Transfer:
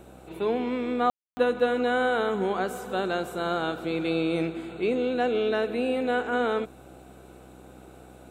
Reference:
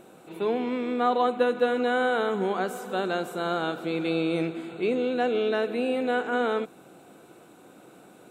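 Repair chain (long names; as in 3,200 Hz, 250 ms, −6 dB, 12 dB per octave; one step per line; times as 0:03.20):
hum removal 63.7 Hz, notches 13
ambience match 0:01.10–0:01.37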